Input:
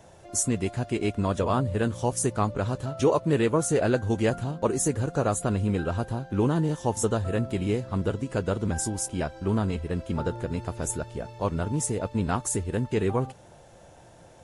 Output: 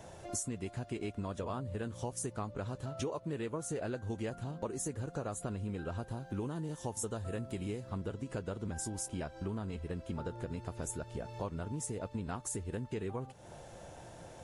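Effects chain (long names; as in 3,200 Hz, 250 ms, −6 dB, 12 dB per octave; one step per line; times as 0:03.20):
0:06.11–0:07.90: high-shelf EQ 9,000 Hz +11 dB
downward compressor 5 to 1, threshold −38 dBFS, peak gain reduction 18.5 dB
level +1 dB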